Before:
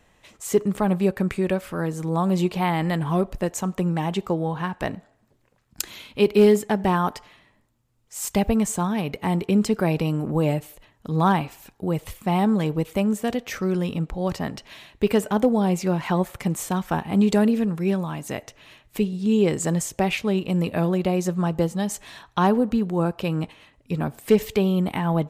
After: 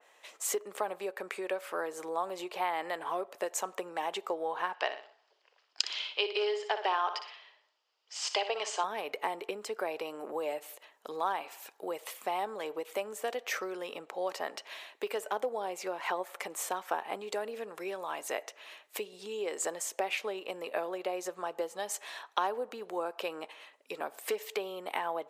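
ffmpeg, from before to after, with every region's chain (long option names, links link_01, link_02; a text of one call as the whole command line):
ffmpeg -i in.wav -filter_complex "[0:a]asettb=1/sr,asplit=3[link_01][link_02][link_03];[link_01]atrim=end=4.744[link_04];[link_02]atrim=start=4.74:end=8.84,asetpts=PTS-STARTPTS,afade=type=in:duration=0.004:curve=qsin,afade=type=out:start_time=4.096:duration=0.004:curve=qsin,highpass=frequency=390:width=0.5412,highpass=frequency=390:width=1.3066,equalizer=frequency=540:width_type=q:width=4:gain=-5,equalizer=frequency=3000:width_type=q:width=4:gain=9,equalizer=frequency=4900:width_type=q:width=4:gain=10,lowpass=frequency=5800:width=0.5412,lowpass=frequency=5800:width=1.3066,aecho=1:1:60|120|180|240:0.282|0.107|0.0407|0.0155,atrim=end_sample=180810[link_05];[link_03]atrim=start=8.836[link_06];[link_04][link_05]acrossfade=duration=0.004:curve1=hsin:curve2=qsin[link_07];[link_07][link_06]acrossfade=duration=0.004:curve1=qsin:curve2=hsin,acompressor=threshold=-25dB:ratio=6,highpass=frequency=450:width=0.5412,highpass=frequency=450:width=1.3066,adynamicequalizer=threshold=0.00355:dfrequency=2700:dqfactor=0.7:tfrequency=2700:tqfactor=0.7:attack=5:release=100:ratio=0.375:range=2:mode=cutabove:tftype=highshelf" out.wav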